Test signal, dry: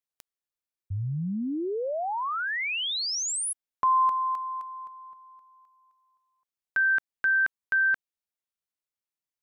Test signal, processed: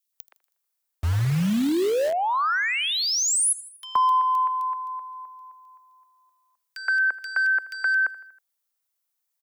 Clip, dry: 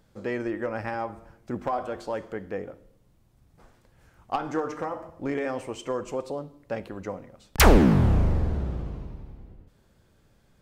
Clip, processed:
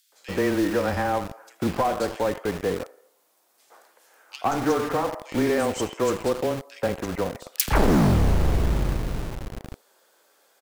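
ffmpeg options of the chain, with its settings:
-filter_complex "[0:a]asoftclip=type=tanh:threshold=0.0944,asplit=2[s0][s1];[s1]aecho=0:1:80|160|240|320:0.1|0.052|0.027|0.0141[s2];[s0][s2]amix=inputs=2:normalize=0,afreqshift=-15,acrossover=split=400|1300[s3][s4][s5];[s3]acompressor=threshold=0.0631:ratio=4[s6];[s4]acompressor=threshold=0.0316:ratio=4[s7];[s5]acompressor=threshold=0.0251:ratio=4[s8];[s6][s7][s8]amix=inputs=3:normalize=0,highshelf=f=10000:g=9.5,acrossover=split=2500[s9][s10];[s9]adelay=120[s11];[s11][s10]amix=inputs=2:normalize=0,acrossover=split=440|920[s12][s13][s14];[s12]acrusher=bits=6:mix=0:aa=0.000001[s15];[s15][s13][s14]amix=inputs=3:normalize=0,volume=2.51"

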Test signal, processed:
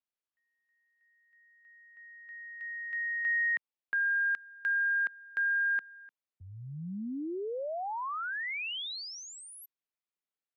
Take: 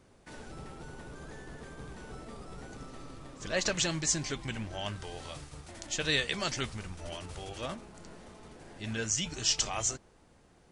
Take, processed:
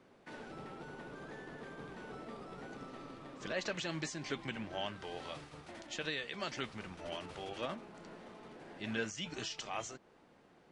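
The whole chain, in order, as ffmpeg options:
-filter_complex "[0:a]alimiter=level_in=1.19:limit=0.0631:level=0:latency=1:release=258,volume=0.841,acrossover=split=150 4200:gain=0.141 1 0.2[s0][s1][s2];[s0][s1][s2]amix=inputs=3:normalize=0"

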